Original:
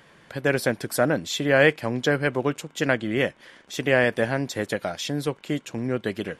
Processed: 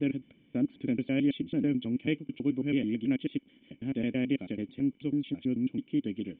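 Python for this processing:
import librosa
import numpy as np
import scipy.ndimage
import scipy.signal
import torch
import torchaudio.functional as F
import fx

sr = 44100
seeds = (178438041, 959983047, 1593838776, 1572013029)

y = fx.block_reorder(x, sr, ms=109.0, group=5)
y = fx.formant_cascade(y, sr, vowel='i')
y = y * librosa.db_to_amplitude(3.0)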